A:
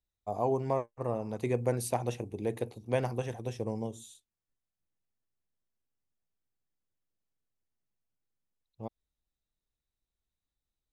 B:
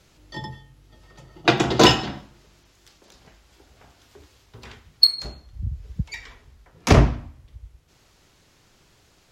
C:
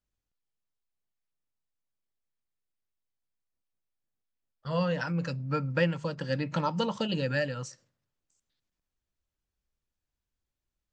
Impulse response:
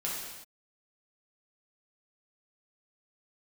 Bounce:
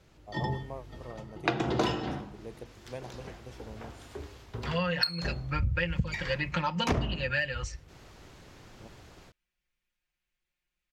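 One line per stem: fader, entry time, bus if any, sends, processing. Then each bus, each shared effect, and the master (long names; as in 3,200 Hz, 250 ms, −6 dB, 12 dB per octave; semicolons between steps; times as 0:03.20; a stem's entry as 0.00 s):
−11.5 dB, 0.00 s, no send, no processing
−1.5 dB, 0.00 s, no send, high-shelf EQ 2,700 Hz −10.5 dB; hum removal 50.76 Hz, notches 30; automatic gain control gain up to 10.5 dB
−5.5 dB, 0.00 s, no send, parametric band 2,300 Hz +14.5 dB 1.4 octaves; comb filter 5.6 ms, depth 96%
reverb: not used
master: downward compressor 8 to 1, threshold −25 dBFS, peak gain reduction 16 dB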